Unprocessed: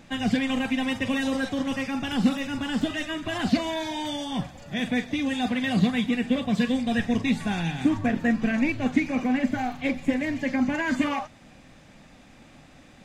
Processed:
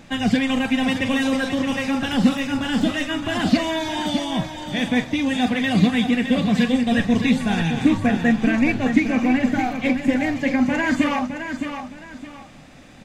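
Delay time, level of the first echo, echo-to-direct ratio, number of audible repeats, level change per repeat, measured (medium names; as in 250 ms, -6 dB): 615 ms, -8.0 dB, -7.5 dB, 2, -10.5 dB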